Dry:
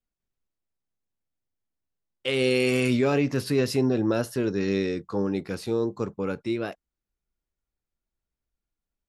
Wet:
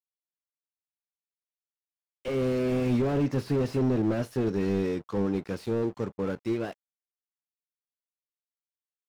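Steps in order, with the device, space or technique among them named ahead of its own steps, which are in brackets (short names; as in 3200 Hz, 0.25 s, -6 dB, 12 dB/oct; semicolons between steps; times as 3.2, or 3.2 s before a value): early transistor amplifier (crossover distortion -48 dBFS; slew limiter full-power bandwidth 25 Hz)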